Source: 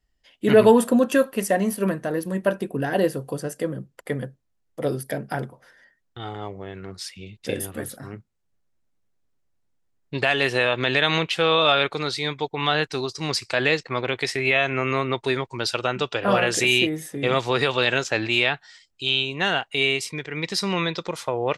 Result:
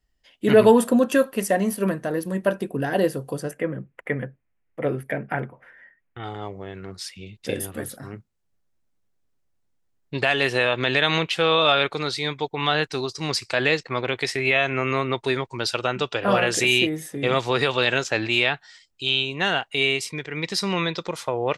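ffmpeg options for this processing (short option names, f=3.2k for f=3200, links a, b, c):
-filter_complex "[0:a]asettb=1/sr,asplit=3[a][b][c];[a]atrim=end=3.514[d];[b]atrim=start=3.51:end=6.24,asetpts=PTS-STARTPTS,afade=t=in:d=0.004:c=qsin,afade=t=out:st=2.726:d=0.004:c=qsin,highshelf=f=3.3k:t=q:w=3:g=-13[e];[c]atrim=start=6.236[f];[d][e]acrossfade=d=0.004:c1=hsin:c2=qsin[g];[g][f]acrossfade=d=0.004:c1=qsin:c2=hsin"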